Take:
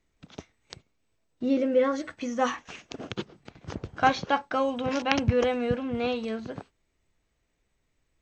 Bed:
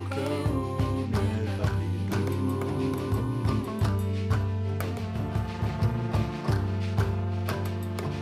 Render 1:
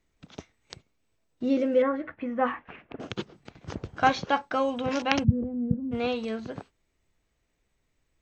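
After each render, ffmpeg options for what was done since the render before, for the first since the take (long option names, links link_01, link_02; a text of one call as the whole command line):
ffmpeg -i in.wav -filter_complex "[0:a]asettb=1/sr,asplit=3[link_01][link_02][link_03];[link_01]atrim=end=1.824[link_04];[link_02]atrim=start=1.82:end=3,asetpts=PTS-STARTPTS,afade=type=in:duration=0.004:curve=qsin,afade=type=out:start_time=1.176:duration=0.004:curve=qsin,lowpass=frequency=2300:width=0.5412,lowpass=frequency=2300:width=1.3066[link_05];[link_03]atrim=start=2.996[link_06];[link_04][link_05]acrossfade=duration=0.004:curve1=hsin:curve2=qsin[link_07];[link_07][link_06]acrossfade=duration=0.004:curve1=qsin:curve2=hsin,asplit=3[link_08][link_09][link_10];[link_08]afade=type=out:start_time=5.23:duration=0.02[link_11];[link_09]lowpass=frequency=200:width_type=q:width=2.1,afade=type=in:start_time=5.23:duration=0.02,afade=type=out:start_time=5.91:duration=0.02[link_12];[link_10]afade=type=in:start_time=5.91:duration=0.02[link_13];[link_11][link_12][link_13]amix=inputs=3:normalize=0" out.wav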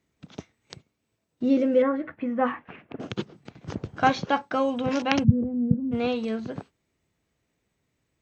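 ffmpeg -i in.wav -af "highpass=120,lowshelf=frequency=250:gain=8.5" out.wav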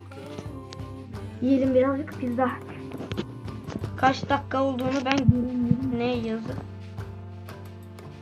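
ffmpeg -i in.wav -i bed.wav -filter_complex "[1:a]volume=-10.5dB[link_01];[0:a][link_01]amix=inputs=2:normalize=0" out.wav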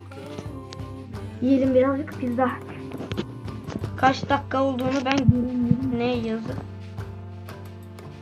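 ffmpeg -i in.wav -af "volume=2dB,alimiter=limit=-3dB:level=0:latency=1" out.wav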